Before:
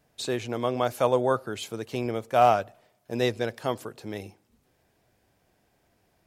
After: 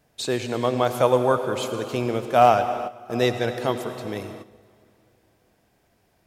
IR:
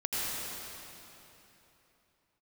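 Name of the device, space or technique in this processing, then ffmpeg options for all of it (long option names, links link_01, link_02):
keyed gated reverb: -filter_complex "[0:a]asplit=3[link_01][link_02][link_03];[1:a]atrim=start_sample=2205[link_04];[link_02][link_04]afir=irnorm=-1:irlink=0[link_05];[link_03]apad=whole_len=276352[link_06];[link_05][link_06]sidechaingate=range=-12dB:threshold=-56dB:ratio=16:detection=peak,volume=-14dB[link_07];[link_01][link_07]amix=inputs=2:normalize=0,volume=2.5dB"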